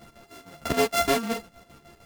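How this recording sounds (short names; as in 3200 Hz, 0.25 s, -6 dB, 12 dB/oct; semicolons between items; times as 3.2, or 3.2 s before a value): a buzz of ramps at a fixed pitch in blocks of 64 samples; chopped level 6.5 Hz, depth 65%, duty 60%; a shimmering, thickened sound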